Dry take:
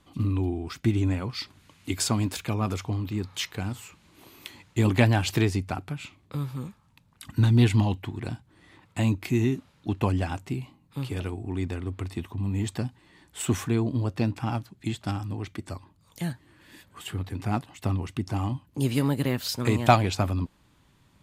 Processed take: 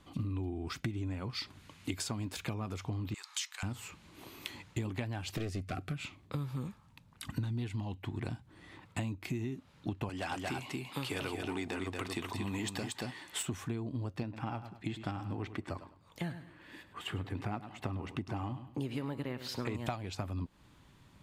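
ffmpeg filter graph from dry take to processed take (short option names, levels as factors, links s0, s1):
-filter_complex "[0:a]asettb=1/sr,asplit=3[s0][s1][s2];[s0]atrim=end=3.144[s3];[s1]atrim=start=3.14:end=3.63,asetpts=PTS-STARTPTS,afade=t=in:d=0.004:c=qsin,afade=t=out:st=0.486:d=0.004:c=qsin,highpass=f=1000:w=0.5412,highpass=f=1000:w=1.3066,equalizer=f=7200:t=o:w=1.2:g=11[s4];[s2]atrim=start=3.626[s5];[s3][s4]acrossfade=d=0.004:c1=hsin:c2=qsin[s6];[s6][s5]acrossfade=d=0.004:c1=qsin:c2=hsin,asettb=1/sr,asplit=3[s7][s8][s9];[s7]atrim=end=5.374[s10];[s8]atrim=start=5.37:end=5.98,asetpts=PTS-STARTPTS,afade=t=in:d=0.004:c=qsin,afade=t=out:st=0.606:d=0.004:c=qsin,aeval=exprs='clip(val(0),-1,0.0596)':c=same,asuperstop=centerf=910:order=8:qfactor=3.2[s11];[s9]atrim=start=5.976[s12];[s10][s11]acrossfade=d=0.004:c1=hsin:c2=qsin[s13];[s13][s12]acrossfade=d=0.004:c1=qsin:c2=hsin,asettb=1/sr,asplit=3[s14][s15][s16];[s14]atrim=end=10.094[s17];[s15]atrim=start=10.09:end=13.43,asetpts=PTS-STARTPTS,afade=t=in:d=0.004:c=qsin,afade=t=out:st=3.336:d=0.004:c=qsin,highpass=f=770:p=1,aeval=exprs='0.1*sin(PI/2*1.78*val(0)/0.1)':c=same,aecho=1:1:231:0.531,atrim=end_sample=147294[s18];[s16]atrim=start=13.426[s19];[s17][s18]acrossfade=d=0.004:c1=hsin:c2=qsin[s20];[s20][s19]acrossfade=d=0.004:c1=qsin:c2=hsin,asettb=1/sr,asplit=3[s21][s22][s23];[s21]atrim=end=14.234[s24];[s22]atrim=start=14.23:end=19.75,asetpts=PTS-STARTPTS,afade=t=in:d=0.004:c=qsin,afade=t=out:st=5.516:d=0.004:c=qsin,bass=f=250:g=-5,treble=f=4000:g=-10,aecho=1:1:102|204|306:0.2|0.0519|0.0135,atrim=end_sample=243432[s25];[s23]atrim=start=19.746[s26];[s24][s25]acrossfade=d=0.004:c1=hsin:c2=qsin[s27];[s27][s26]acrossfade=d=0.004:c1=qsin:c2=hsin,acompressor=threshold=0.02:ratio=16,highshelf=f=7500:g=-4.5,volume=1.12"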